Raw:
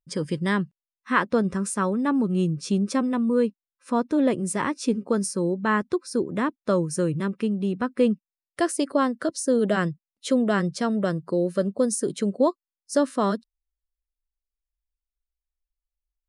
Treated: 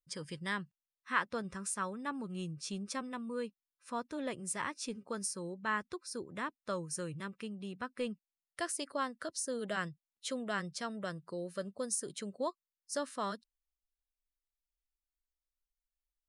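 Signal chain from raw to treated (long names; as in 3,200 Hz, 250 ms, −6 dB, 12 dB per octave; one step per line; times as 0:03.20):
parametric band 280 Hz −13 dB 2.8 octaves
level −6.5 dB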